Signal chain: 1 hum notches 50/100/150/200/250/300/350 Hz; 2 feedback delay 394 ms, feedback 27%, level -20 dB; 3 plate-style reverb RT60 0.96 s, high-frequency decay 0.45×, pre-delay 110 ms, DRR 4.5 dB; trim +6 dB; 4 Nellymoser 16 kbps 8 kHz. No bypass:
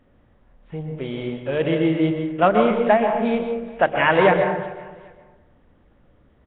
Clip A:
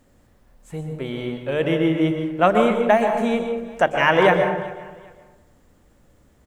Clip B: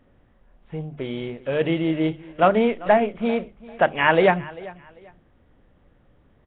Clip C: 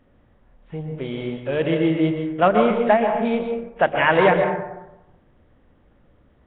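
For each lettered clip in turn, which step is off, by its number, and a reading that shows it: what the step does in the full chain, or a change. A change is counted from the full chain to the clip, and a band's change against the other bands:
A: 4, 4 kHz band +2.5 dB; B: 3, momentary loudness spread change +2 LU; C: 2, momentary loudness spread change -2 LU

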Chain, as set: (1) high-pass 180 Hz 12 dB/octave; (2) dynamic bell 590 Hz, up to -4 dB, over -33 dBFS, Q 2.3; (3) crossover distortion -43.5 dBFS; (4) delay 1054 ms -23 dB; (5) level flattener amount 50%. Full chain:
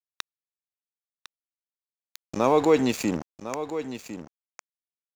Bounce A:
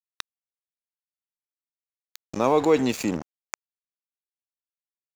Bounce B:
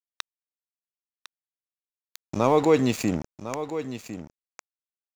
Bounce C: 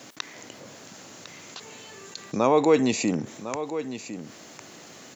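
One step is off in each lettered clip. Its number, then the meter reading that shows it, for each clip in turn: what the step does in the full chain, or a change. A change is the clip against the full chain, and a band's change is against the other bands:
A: 4, momentary loudness spread change +1 LU; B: 1, 125 Hz band +5.5 dB; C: 3, distortion -22 dB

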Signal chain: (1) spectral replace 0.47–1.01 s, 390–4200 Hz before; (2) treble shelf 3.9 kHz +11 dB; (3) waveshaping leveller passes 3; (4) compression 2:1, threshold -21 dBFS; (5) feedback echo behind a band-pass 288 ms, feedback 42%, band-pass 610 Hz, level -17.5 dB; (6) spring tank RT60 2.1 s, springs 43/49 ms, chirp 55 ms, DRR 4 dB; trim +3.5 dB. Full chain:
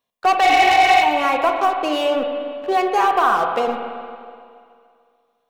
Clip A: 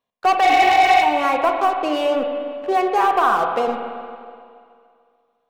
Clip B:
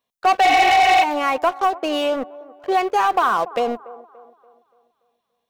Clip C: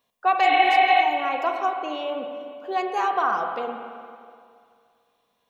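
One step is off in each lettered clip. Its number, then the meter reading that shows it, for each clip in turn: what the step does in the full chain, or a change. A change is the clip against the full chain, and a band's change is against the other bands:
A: 2, 4 kHz band -3.0 dB; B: 6, momentary loudness spread change -1 LU; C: 3, crest factor change +4.5 dB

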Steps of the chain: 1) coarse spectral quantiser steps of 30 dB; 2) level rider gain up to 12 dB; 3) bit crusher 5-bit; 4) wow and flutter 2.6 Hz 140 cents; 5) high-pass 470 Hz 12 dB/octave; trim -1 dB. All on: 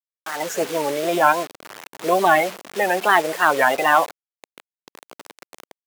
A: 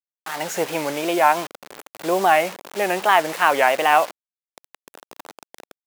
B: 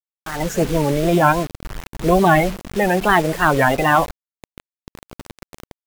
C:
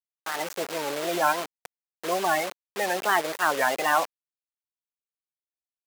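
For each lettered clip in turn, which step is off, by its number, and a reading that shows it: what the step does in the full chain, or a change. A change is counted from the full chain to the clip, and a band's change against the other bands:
1, 2 kHz band -1.5 dB; 5, 125 Hz band +18.5 dB; 2, 8 kHz band +5.0 dB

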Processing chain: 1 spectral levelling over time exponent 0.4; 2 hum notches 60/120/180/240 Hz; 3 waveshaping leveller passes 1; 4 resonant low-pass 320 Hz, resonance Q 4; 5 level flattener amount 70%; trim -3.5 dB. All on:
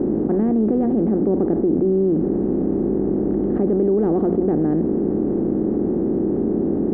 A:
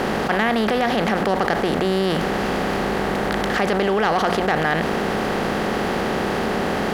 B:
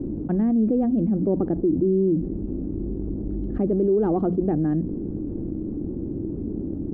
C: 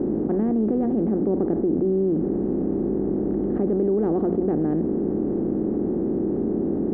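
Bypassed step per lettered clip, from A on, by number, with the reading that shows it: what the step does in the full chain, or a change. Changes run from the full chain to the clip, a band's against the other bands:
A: 4, 1 kHz band +16.0 dB; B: 1, 125 Hz band +3.5 dB; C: 3, loudness change -3.5 LU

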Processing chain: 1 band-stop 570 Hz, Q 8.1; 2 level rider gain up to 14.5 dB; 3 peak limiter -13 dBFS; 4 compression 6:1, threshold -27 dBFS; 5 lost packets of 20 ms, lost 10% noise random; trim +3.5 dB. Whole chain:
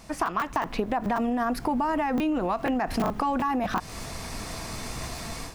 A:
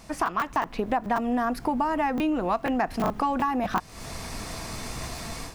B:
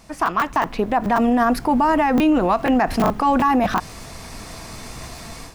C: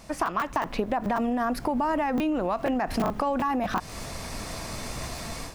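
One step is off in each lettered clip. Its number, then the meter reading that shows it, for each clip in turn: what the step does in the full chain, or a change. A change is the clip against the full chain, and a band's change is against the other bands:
3, mean gain reduction 2.0 dB; 4, mean gain reduction 5.0 dB; 1, 500 Hz band +1.5 dB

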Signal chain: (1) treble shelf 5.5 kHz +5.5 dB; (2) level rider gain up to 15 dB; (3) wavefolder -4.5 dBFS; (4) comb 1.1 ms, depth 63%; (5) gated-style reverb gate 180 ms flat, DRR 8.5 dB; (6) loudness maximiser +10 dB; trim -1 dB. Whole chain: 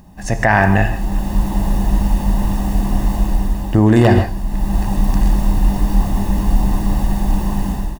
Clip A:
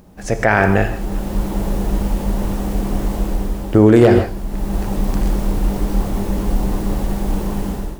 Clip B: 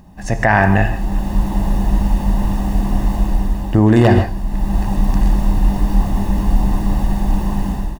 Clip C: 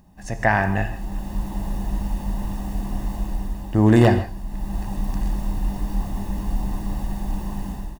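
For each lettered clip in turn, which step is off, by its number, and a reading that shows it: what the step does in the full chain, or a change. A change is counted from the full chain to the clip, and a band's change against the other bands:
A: 4, 500 Hz band +6.0 dB; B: 1, 8 kHz band -3.5 dB; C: 6, crest factor change +7.0 dB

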